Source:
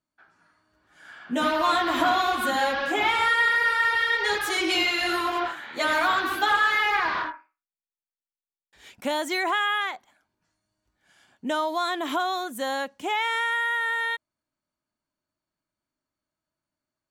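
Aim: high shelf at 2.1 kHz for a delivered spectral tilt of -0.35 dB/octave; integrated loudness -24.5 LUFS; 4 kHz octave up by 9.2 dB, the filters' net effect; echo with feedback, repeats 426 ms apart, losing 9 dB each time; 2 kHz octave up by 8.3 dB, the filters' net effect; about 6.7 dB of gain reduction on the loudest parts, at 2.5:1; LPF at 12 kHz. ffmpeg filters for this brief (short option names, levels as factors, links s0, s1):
-af "lowpass=12000,equalizer=f=2000:t=o:g=6.5,highshelf=f=2100:g=4,equalizer=f=4000:t=o:g=5.5,acompressor=threshold=0.0891:ratio=2.5,aecho=1:1:426|852|1278|1704:0.355|0.124|0.0435|0.0152,volume=0.708"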